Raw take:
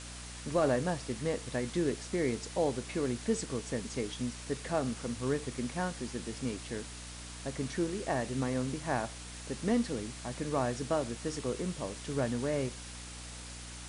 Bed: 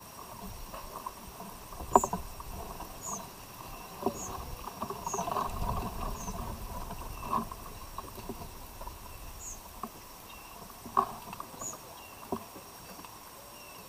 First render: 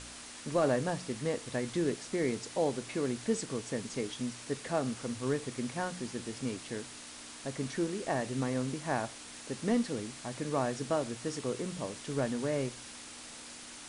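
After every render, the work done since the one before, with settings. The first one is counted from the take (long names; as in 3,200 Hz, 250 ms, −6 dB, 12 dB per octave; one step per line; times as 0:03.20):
hum removal 60 Hz, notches 3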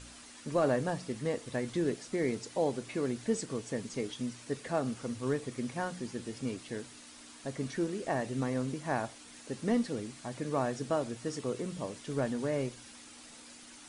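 broadband denoise 7 dB, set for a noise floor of −48 dBFS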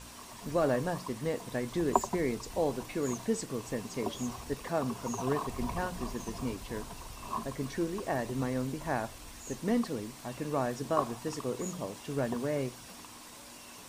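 mix in bed −4.5 dB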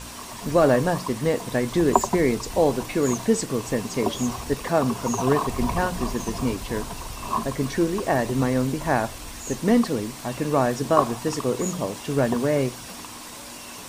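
level +10.5 dB
brickwall limiter −1 dBFS, peak gain reduction 3 dB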